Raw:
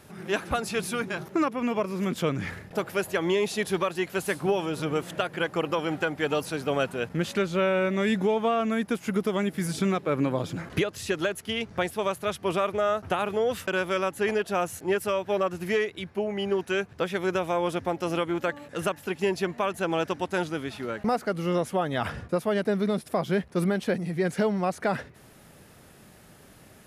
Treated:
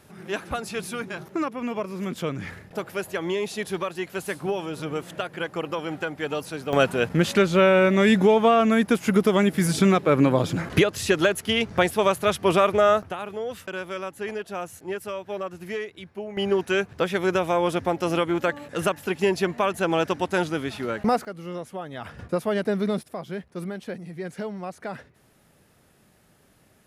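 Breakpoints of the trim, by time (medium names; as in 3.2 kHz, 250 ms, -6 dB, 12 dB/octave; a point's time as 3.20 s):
-2 dB
from 6.73 s +7 dB
from 13.03 s -5.5 dB
from 16.37 s +4 dB
from 21.25 s -8 dB
from 22.19 s +1 dB
from 23.03 s -7.5 dB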